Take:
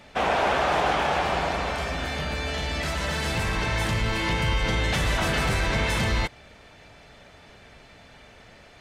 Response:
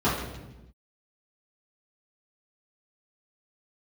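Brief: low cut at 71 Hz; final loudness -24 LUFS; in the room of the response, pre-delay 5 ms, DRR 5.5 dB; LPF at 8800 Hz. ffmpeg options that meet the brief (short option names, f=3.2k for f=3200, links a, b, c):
-filter_complex "[0:a]highpass=71,lowpass=8.8k,asplit=2[a][b];[1:a]atrim=start_sample=2205,adelay=5[c];[b][c]afir=irnorm=-1:irlink=0,volume=-21dB[d];[a][d]amix=inputs=2:normalize=0,volume=-0.5dB"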